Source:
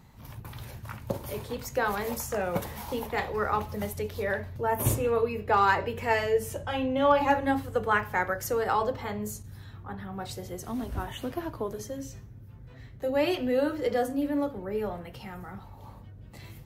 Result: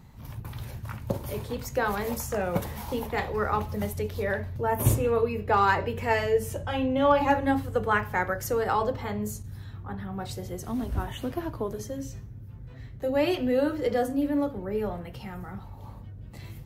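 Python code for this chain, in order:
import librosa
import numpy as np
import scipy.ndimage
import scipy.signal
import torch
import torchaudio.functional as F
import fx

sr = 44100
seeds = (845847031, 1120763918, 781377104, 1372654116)

y = fx.low_shelf(x, sr, hz=250.0, db=5.5)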